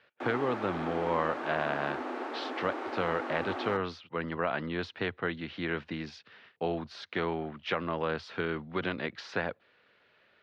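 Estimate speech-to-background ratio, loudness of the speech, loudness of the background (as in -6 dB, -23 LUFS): 3.5 dB, -34.0 LUFS, -37.5 LUFS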